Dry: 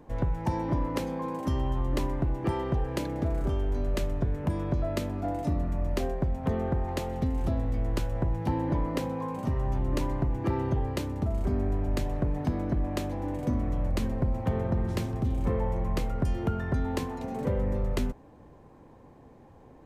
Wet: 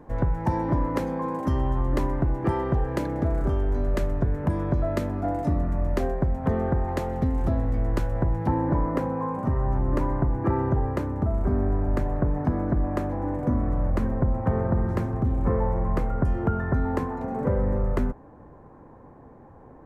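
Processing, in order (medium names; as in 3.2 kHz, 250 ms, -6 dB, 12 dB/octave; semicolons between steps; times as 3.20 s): resonant high shelf 2.2 kHz -6.5 dB, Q 1.5, from 8.47 s -13 dB; trim +4 dB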